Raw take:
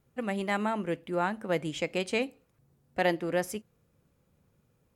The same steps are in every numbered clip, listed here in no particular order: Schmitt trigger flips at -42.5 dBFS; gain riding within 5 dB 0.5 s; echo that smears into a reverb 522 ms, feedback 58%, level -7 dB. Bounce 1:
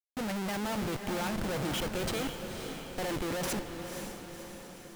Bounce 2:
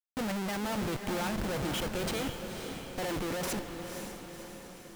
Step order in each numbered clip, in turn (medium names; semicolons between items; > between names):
gain riding > Schmitt trigger > echo that smears into a reverb; Schmitt trigger > gain riding > echo that smears into a reverb